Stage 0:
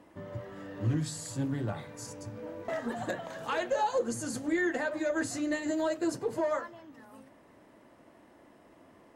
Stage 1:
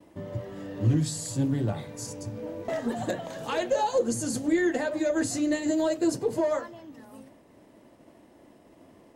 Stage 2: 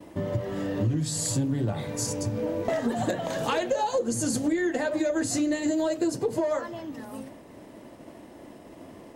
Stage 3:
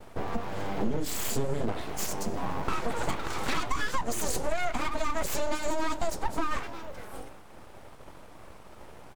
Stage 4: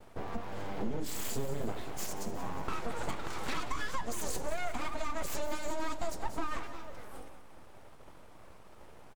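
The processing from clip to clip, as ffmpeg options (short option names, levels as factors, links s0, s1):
-af "agate=range=0.0224:threshold=0.00178:ratio=3:detection=peak,equalizer=f=1400:w=0.89:g=-8,volume=2.11"
-af "acompressor=threshold=0.0251:ratio=6,volume=2.66"
-filter_complex "[0:a]asplit=2[s0][s1];[s1]adelay=291.5,volume=0.0794,highshelf=f=4000:g=-6.56[s2];[s0][s2]amix=inputs=2:normalize=0,aeval=exprs='abs(val(0))':c=same"
-af "aecho=1:1:182|364|546|728|910|1092:0.211|0.116|0.0639|0.0352|0.0193|0.0106,volume=0.473"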